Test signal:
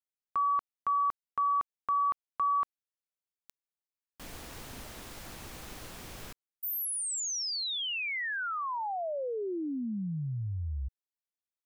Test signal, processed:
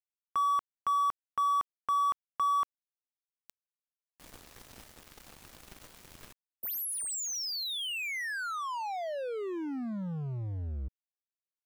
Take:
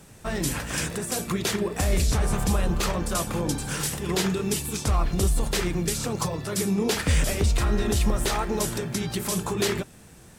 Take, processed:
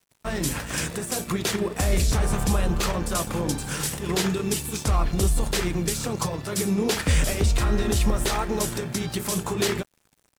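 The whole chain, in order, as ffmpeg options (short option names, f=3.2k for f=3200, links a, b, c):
-af "aeval=exprs='sgn(val(0))*max(abs(val(0))-0.00668,0)':c=same,volume=1.5dB"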